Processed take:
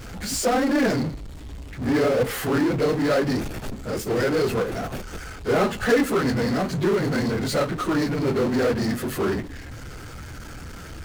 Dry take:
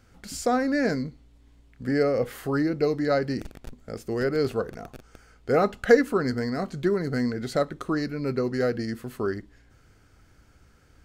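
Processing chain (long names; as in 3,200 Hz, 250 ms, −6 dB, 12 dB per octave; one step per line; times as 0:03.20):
random phases in long frames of 50 ms
power curve on the samples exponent 0.5
level −5.5 dB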